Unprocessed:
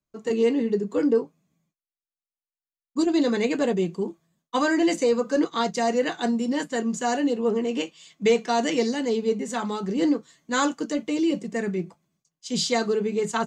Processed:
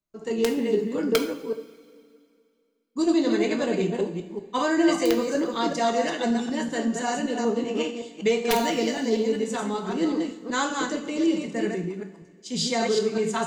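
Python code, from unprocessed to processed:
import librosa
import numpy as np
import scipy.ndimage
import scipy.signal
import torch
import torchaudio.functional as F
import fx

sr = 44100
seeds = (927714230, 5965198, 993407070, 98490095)

y = fx.reverse_delay(x, sr, ms=191, wet_db=-3.5)
y = (np.mod(10.0 ** (10.0 / 20.0) * y + 1.0, 2.0) - 1.0) / 10.0 ** (10.0 / 20.0)
y = fx.rev_double_slope(y, sr, seeds[0], early_s=0.46, late_s=2.4, knee_db=-18, drr_db=4.5)
y = y * 10.0 ** (-3.0 / 20.0)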